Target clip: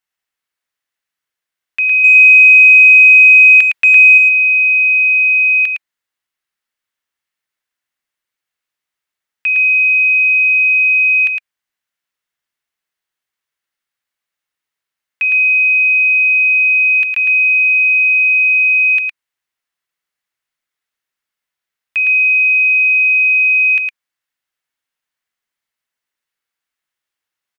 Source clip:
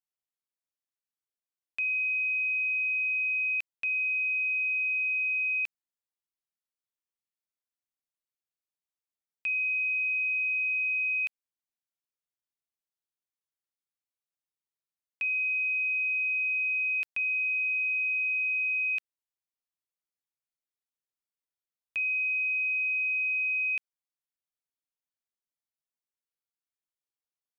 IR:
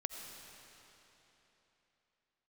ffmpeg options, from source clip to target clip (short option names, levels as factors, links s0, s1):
-filter_complex "[0:a]equalizer=f=1900:t=o:w=1.8:g=11,bandreject=f=2400:w=22,asettb=1/sr,asplit=3[s0][s1][s2];[s0]atrim=end=2.044[s3];[s1]atrim=start=2.04:end=4.18,asetpts=PTS-STARTPTS,afade=t=in:d=0.004:c=qsin,afade=t=out:st=2.136:d=0.004:c=qsin,acontrast=69[s4];[s2]atrim=start=4.176[s5];[s3][s4]acrossfade=d=0.004:c1=hsin:c2=qsin[s6];[s6][s5]acrossfade=d=0.004:c1=qsin:c2=hsin,aecho=1:1:110:0.596,volume=2.24"